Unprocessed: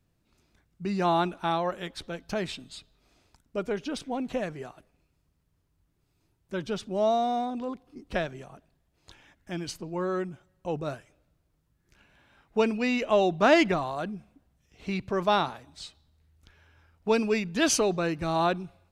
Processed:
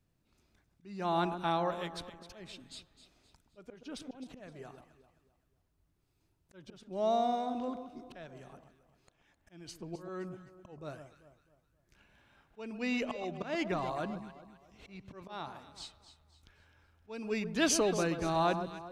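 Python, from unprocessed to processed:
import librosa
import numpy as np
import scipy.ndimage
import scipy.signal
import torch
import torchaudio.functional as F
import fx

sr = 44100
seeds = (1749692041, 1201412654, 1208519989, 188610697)

y = fx.auto_swell(x, sr, attack_ms=437.0)
y = fx.echo_alternate(y, sr, ms=130, hz=1300.0, feedback_pct=60, wet_db=-8.5)
y = y * librosa.db_to_amplitude(-4.5)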